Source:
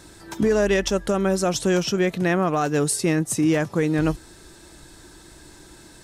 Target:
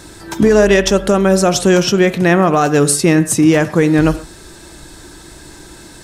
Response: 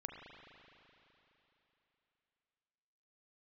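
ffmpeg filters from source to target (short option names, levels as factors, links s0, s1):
-filter_complex "[0:a]asplit=2[s0][s1];[1:a]atrim=start_sample=2205,atrim=end_sample=6174[s2];[s1][s2]afir=irnorm=-1:irlink=0,volume=1.12[s3];[s0][s3]amix=inputs=2:normalize=0,volume=1.78"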